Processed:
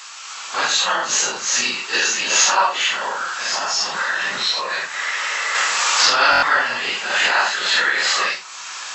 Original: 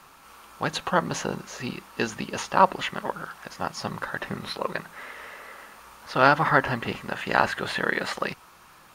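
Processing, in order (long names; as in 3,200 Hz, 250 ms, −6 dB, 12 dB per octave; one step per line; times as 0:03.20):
random phases in long frames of 200 ms
camcorder AGC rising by 17 dB per second
high-pass filter 490 Hz 6 dB per octave
spectral tilt +4.5 dB per octave
0:02.95–0:05.55: downward compressor 2.5 to 1, threshold −23 dBFS, peak gain reduction 7 dB
linear-phase brick-wall low-pass 8,000 Hz
buffer that repeats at 0:06.31, samples 1,024, times 4
one half of a high-frequency compander encoder only
level +3.5 dB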